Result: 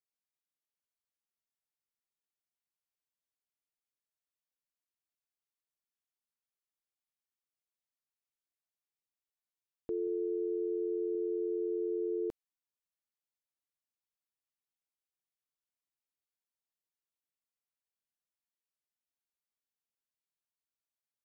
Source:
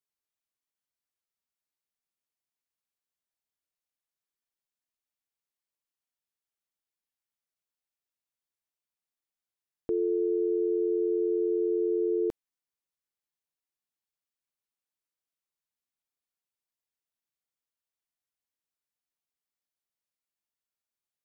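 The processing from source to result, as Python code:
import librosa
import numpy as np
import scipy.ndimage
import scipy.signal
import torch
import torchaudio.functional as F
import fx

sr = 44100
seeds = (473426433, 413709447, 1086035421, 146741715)

y = fx.highpass(x, sr, hz=90.0, slope=12, at=(10.07, 11.15))
y = y * 10.0 ** (-7.0 / 20.0)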